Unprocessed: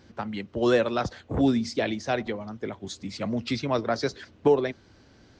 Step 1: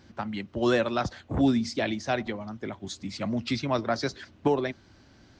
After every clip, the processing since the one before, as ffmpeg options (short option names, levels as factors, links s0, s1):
-af "equalizer=f=460:t=o:w=0.33:g=-7.5"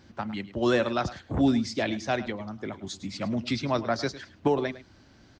-af "aecho=1:1:106:0.168"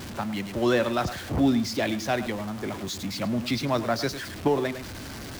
-af "aeval=exprs='val(0)+0.5*0.0224*sgn(val(0))':c=same"